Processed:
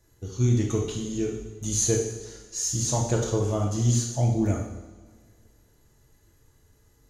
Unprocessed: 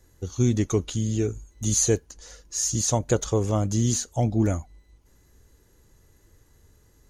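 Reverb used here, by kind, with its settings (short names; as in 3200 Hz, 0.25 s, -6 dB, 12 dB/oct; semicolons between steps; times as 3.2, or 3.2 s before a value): two-slope reverb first 0.87 s, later 2.3 s, from -17 dB, DRR -1.5 dB; gain -5.5 dB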